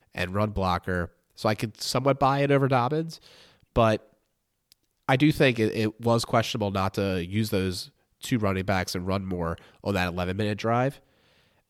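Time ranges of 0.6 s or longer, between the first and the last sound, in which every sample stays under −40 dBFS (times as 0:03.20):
0:03.97–0:04.72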